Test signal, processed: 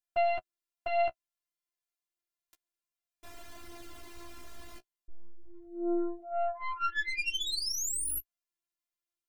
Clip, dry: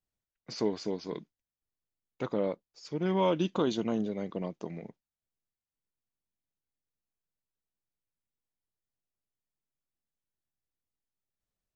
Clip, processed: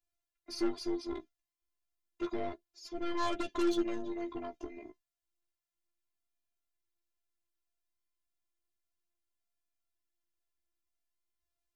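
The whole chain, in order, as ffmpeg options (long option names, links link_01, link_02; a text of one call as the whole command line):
ffmpeg -i in.wav -af "afftfilt=real='hypot(re,im)*cos(PI*b)':imag='0':win_size=512:overlap=0.75,aeval=exprs='0.106*(cos(1*acos(clip(val(0)/0.106,-1,1)))-cos(1*PI/2))+0.000944*(cos(2*acos(clip(val(0)/0.106,-1,1)))-cos(2*PI/2))+0.0237*(cos(5*acos(clip(val(0)/0.106,-1,1)))-cos(5*PI/2))+0.0188*(cos(6*acos(clip(val(0)/0.106,-1,1)))-cos(6*PI/2))+0.0299*(cos(8*acos(clip(val(0)/0.106,-1,1)))-cos(8*PI/2))':channel_layout=same,flanger=delay=9.9:depth=6.6:regen=16:speed=0.31:shape=sinusoidal" out.wav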